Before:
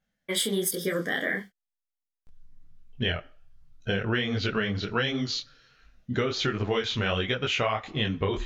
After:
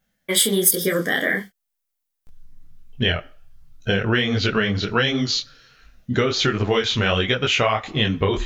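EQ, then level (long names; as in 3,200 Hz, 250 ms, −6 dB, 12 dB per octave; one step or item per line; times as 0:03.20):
high-shelf EQ 9,200 Hz +10 dB
+7.0 dB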